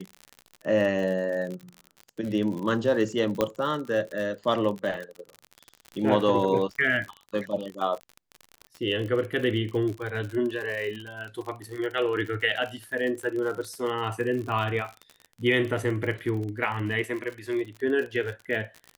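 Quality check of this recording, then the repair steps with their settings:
crackle 54/s -32 dBFS
3.41 pop -10 dBFS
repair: de-click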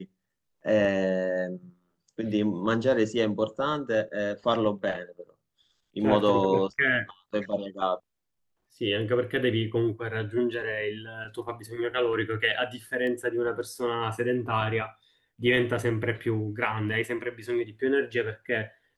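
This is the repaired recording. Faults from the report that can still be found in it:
none

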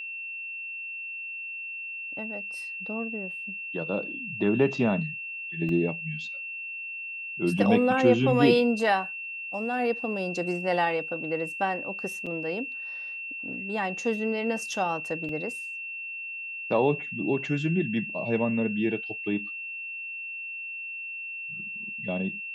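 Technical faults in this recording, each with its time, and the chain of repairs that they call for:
tone 2700 Hz -34 dBFS
5.69 gap 2.2 ms
12.26–12.27 gap 5.7 ms
15.29 gap 2.3 ms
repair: notch 2700 Hz, Q 30; interpolate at 5.69, 2.2 ms; interpolate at 12.26, 5.7 ms; interpolate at 15.29, 2.3 ms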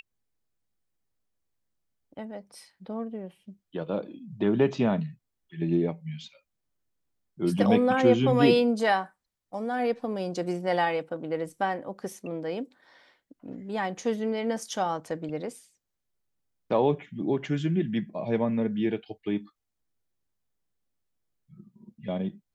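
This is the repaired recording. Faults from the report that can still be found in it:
none

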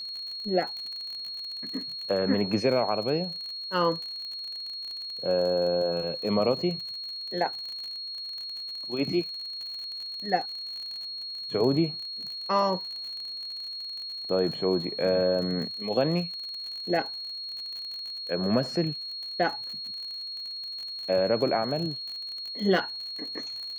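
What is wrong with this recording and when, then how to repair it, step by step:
crackle 44/s -34 dBFS
tone 4300 Hz -34 dBFS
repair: de-click; notch 4300 Hz, Q 30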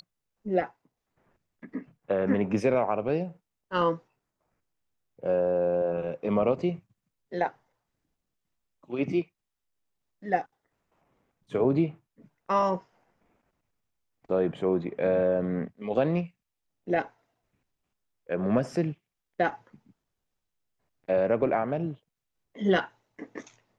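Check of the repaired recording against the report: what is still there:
none

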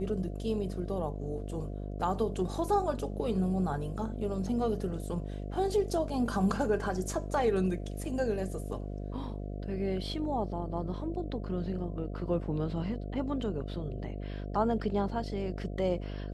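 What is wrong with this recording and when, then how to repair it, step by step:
buzz 50 Hz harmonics 14 -38 dBFS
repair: de-hum 50 Hz, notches 14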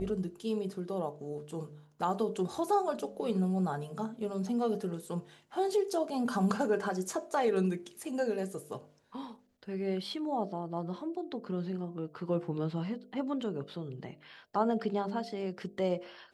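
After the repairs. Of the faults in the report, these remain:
none

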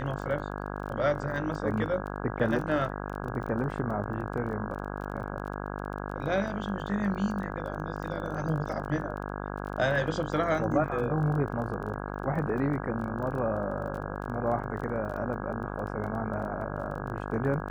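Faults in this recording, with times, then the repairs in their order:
buzz 50 Hz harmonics 33 -36 dBFS
crackle 21/s -37 dBFS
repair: de-click; de-hum 50 Hz, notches 33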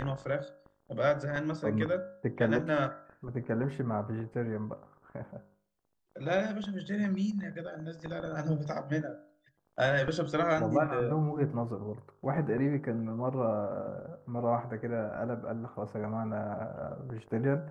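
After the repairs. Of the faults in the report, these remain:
none

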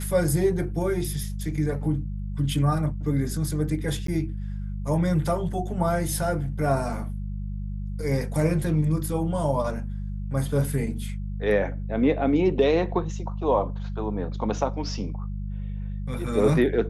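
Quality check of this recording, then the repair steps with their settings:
hum 50 Hz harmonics 4 -31 dBFS
4.07–4.08 gap 13 ms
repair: de-hum 50 Hz, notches 4; interpolate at 4.07, 13 ms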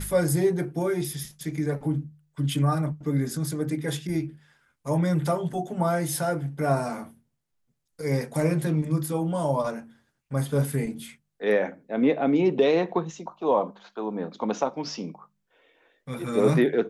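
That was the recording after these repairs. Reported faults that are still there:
none

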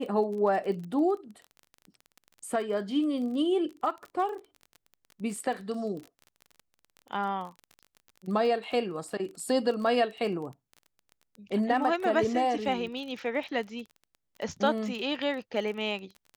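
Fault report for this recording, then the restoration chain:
crackle 26/s -37 dBFS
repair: de-click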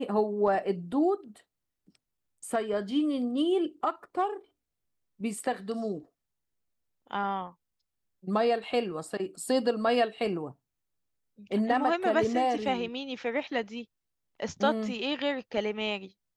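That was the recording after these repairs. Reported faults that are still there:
none

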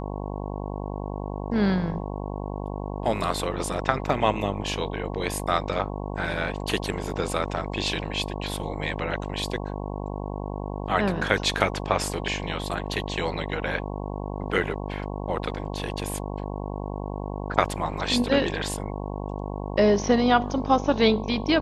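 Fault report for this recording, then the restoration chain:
buzz 50 Hz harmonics 22 -32 dBFS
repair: de-hum 50 Hz, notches 22

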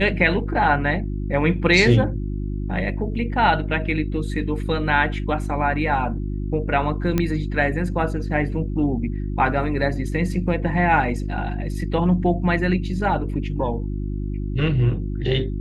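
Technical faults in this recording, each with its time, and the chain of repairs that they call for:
hum 50 Hz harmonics 7 -26 dBFS
7.18 pop -8 dBFS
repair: de-click; de-hum 50 Hz, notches 7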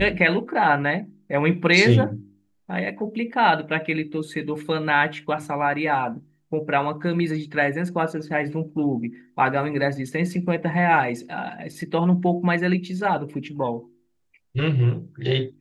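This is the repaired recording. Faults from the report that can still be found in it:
none

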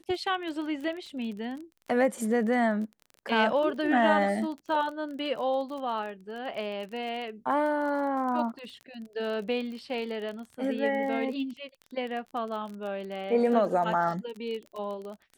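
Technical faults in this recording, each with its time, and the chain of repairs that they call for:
crackle 28/s -36 dBFS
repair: de-click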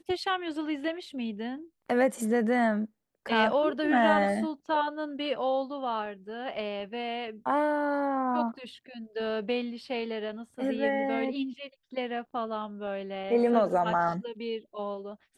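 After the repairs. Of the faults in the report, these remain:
none

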